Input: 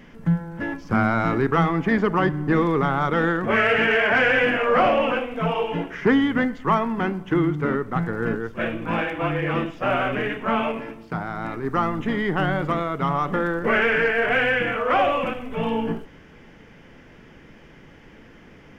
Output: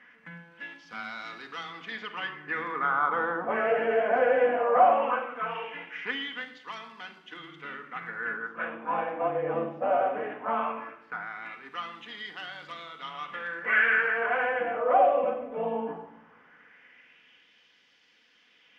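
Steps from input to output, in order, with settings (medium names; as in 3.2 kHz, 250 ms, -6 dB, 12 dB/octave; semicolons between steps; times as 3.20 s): simulated room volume 3600 m³, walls furnished, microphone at 1.9 m; LFO band-pass sine 0.18 Hz 610–4200 Hz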